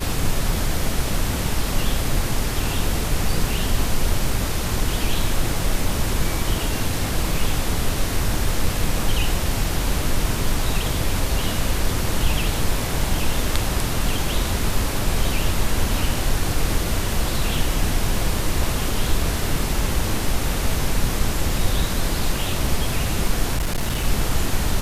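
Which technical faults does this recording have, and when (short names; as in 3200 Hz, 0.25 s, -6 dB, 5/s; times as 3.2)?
23.56–24.05 clipped -18 dBFS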